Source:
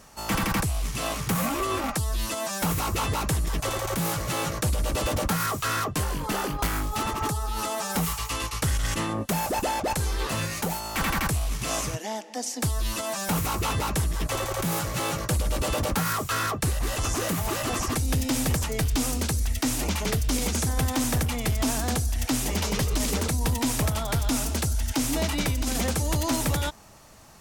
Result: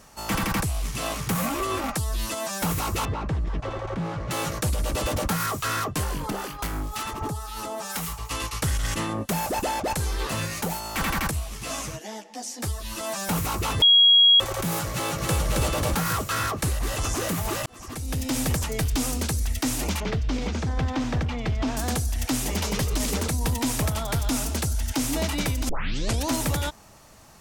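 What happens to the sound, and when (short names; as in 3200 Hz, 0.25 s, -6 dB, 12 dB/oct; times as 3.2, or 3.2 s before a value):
3.05–4.31 tape spacing loss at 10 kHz 31 dB
6.3–8.31 harmonic tremolo 2.1 Hz, crossover 1000 Hz
11.31–13.01 ensemble effect
13.82–14.4 bleep 3300 Hz -12 dBFS
14.94–15.4 echo throw 0.27 s, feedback 70%, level -2.5 dB
17.66–18.39 fade in
20–21.77 air absorption 180 m
25.69 tape start 0.60 s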